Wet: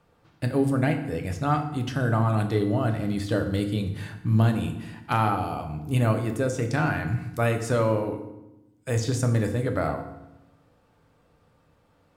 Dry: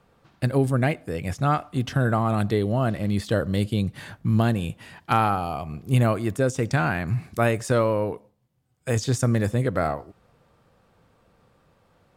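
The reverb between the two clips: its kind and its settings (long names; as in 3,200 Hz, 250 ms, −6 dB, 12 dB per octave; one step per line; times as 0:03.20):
feedback delay network reverb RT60 0.93 s, low-frequency decay 1.45×, high-frequency decay 0.75×, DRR 4.5 dB
level −3.5 dB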